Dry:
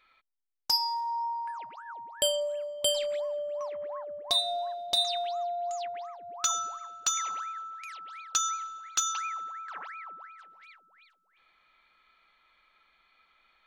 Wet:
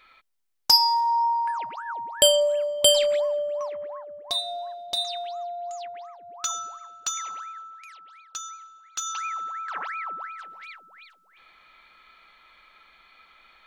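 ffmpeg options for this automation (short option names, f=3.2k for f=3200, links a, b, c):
-af "volume=28.5dB,afade=t=out:st=3.01:d=1.03:silence=0.298538,afade=t=out:st=7.57:d=0.74:silence=0.446684,afade=t=in:st=8.91:d=0.32:silence=0.281838,afade=t=in:st=9.23:d=0.97:silence=0.398107"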